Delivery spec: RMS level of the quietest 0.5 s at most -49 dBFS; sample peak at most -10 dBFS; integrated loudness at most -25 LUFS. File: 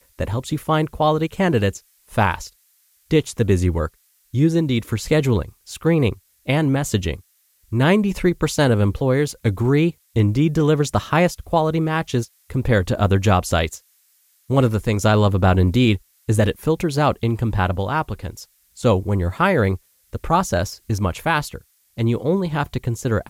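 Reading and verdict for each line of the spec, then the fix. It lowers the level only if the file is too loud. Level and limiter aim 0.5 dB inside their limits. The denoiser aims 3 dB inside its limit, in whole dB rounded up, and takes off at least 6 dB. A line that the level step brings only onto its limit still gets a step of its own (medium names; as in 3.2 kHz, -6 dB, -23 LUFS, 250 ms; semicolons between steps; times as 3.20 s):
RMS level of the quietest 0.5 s -60 dBFS: pass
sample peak -5.0 dBFS: fail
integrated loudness -20.0 LUFS: fail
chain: trim -5.5 dB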